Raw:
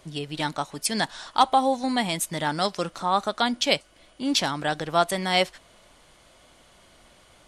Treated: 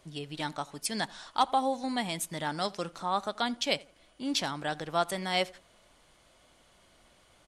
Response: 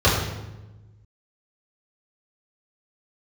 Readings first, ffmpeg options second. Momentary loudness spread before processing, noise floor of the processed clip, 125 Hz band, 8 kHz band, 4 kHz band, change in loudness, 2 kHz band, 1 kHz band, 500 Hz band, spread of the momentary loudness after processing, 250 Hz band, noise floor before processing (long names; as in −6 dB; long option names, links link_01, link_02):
8 LU, −63 dBFS, −7.0 dB, −7.0 dB, −7.0 dB, −7.0 dB, −7.0 dB, −7.0 dB, −7.0 dB, 7 LU, −7.0 dB, −56 dBFS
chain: -filter_complex "[0:a]asplit=2[link_01][link_02];[link_02]adelay=84,lowpass=frequency=2000:poles=1,volume=-21.5dB,asplit=2[link_03][link_04];[link_04]adelay=84,lowpass=frequency=2000:poles=1,volume=0.34[link_05];[link_01][link_03][link_05]amix=inputs=3:normalize=0,volume=-7dB"